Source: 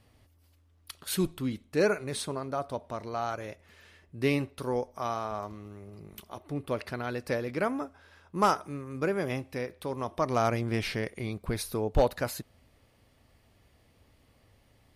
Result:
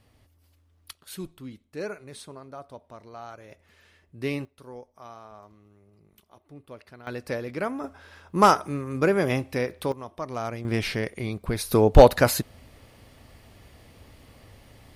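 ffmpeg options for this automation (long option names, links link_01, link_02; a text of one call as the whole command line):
ffmpeg -i in.wav -af "asetnsamples=nb_out_samples=441:pad=0,asendcmd='0.93 volume volume -8.5dB;3.51 volume volume -2.5dB;4.45 volume volume -12dB;7.07 volume volume 0dB;7.84 volume volume 7.5dB;9.92 volume volume -5dB;10.65 volume volume 4dB;11.71 volume volume 12dB',volume=1dB" out.wav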